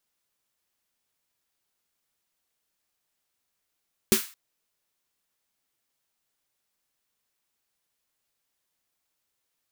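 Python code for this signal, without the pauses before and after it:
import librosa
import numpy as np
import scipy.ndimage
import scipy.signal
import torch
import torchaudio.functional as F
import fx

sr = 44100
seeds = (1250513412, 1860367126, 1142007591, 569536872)

y = fx.drum_snare(sr, seeds[0], length_s=0.22, hz=220.0, second_hz=380.0, noise_db=-3.5, noise_from_hz=1200.0, decay_s=0.12, noise_decay_s=0.36)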